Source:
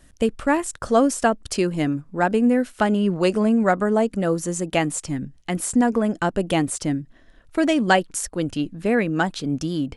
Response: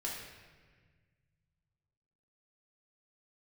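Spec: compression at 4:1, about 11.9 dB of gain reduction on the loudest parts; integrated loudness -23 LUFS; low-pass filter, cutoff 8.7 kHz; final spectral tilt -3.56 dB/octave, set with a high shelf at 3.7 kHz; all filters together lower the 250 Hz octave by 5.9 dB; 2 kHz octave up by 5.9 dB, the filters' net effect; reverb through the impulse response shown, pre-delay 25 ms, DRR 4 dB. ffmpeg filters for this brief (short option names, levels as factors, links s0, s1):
-filter_complex "[0:a]lowpass=8700,equalizer=f=250:t=o:g=-7.5,equalizer=f=2000:t=o:g=6.5,highshelf=f=3700:g=6,acompressor=threshold=0.0708:ratio=4,asplit=2[s0][s1];[1:a]atrim=start_sample=2205,adelay=25[s2];[s1][s2]afir=irnorm=-1:irlink=0,volume=0.531[s3];[s0][s3]amix=inputs=2:normalize=0,volume=1.41"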